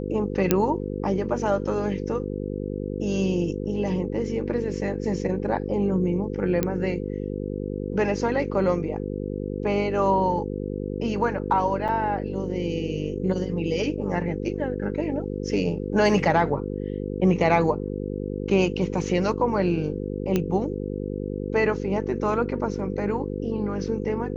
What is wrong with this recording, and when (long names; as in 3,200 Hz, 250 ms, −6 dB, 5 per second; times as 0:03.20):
mains buzz 50 Hz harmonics 10 −30 dBFS
0:00.51: click −3 dBFS
0:06.63: click −9 dBFS
0:11.88–0:11.89: drop-out 7.1 ms
0:20.36: click −10 dBFS